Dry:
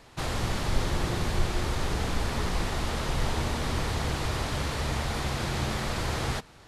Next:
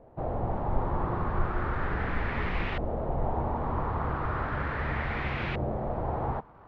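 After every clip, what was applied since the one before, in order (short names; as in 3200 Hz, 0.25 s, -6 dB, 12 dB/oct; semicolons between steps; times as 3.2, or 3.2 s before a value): crackle 380/s -38 dBFS; LFO low-pass saw up 0.36 Hz 590–2600 Hz; Bessel low-pass 3500 Hz, order 2; gain -2 dB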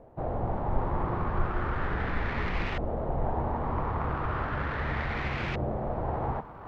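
self-modulated delay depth 0.13 ms; reverse; upward compressor, threshold -35 dBFS; reverse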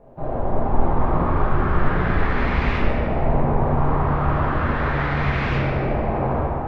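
reverb RT60 3.1 s, pre-delay 5 ms, DRR -8 dB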